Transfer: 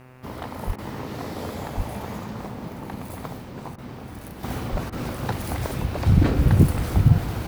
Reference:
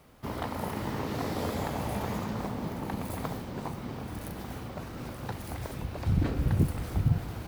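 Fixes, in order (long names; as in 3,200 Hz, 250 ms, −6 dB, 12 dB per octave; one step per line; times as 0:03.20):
hum removal 127.6 Hz, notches 22
high-pass at the plosives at 0:00.66/0:01.76/0:04.71
repair the gap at 0:00.76/0:03.76/0:04.90, 22 ms
level correction −9.5 dB, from 0:04.43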